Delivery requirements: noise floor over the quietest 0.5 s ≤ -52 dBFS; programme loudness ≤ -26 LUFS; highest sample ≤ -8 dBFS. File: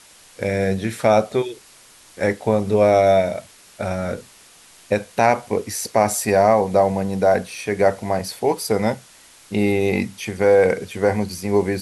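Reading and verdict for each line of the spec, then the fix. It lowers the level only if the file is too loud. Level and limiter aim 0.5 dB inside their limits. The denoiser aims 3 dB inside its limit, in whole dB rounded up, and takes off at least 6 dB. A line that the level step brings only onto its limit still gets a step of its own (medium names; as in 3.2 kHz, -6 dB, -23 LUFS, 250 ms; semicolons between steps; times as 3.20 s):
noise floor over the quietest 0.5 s -48 dBFS: fail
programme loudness -20.0 LUFS: fail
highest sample -5.0 dBFS: fail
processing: trim -6.5 dB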